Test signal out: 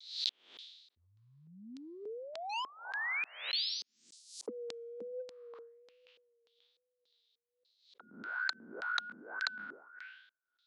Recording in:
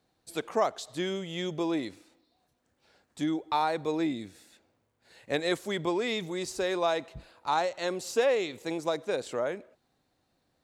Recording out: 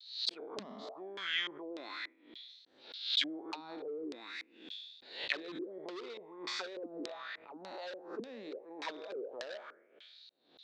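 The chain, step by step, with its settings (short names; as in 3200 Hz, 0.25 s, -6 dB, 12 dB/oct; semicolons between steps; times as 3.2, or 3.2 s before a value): spectral trails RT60 1.09 s; auto-wah 220–3900 Hz, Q 5.4, down, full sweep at -21 dBFS; overloaded stage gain 31 dB; compressor 8:1, threshold -48 dBFS; LFO low-pass square 1.7 Hz 420–4200 Hz; resonant low shelf 340 Hz +6 dB, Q 1.5; vibrato 1.2 Hz 58 cents; weighting filter ITU-R 468; backwards sustainer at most 100 dB/s; gain +10 dB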